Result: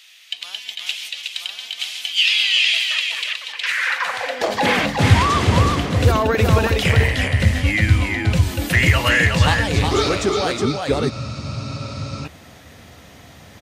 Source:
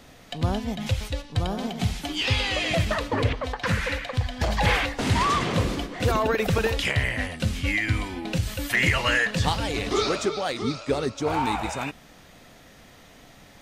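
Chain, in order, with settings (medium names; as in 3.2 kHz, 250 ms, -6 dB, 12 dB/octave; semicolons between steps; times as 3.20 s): delay 366 ms -4 dB; high-pass sweep 2.8 kHz -> 77 Hz, 3.59–5.21 s; spectral freeze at 11.13 s, 1.12 s; trim +4.5 dB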